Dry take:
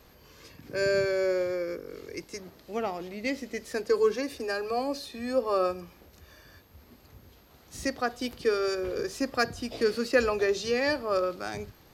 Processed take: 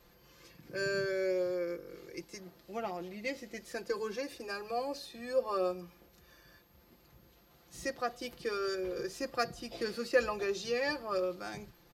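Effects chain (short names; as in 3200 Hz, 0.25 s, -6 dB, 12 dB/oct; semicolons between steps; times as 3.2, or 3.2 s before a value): comb 5.8 ms, depth 64%; gain -7.5 dB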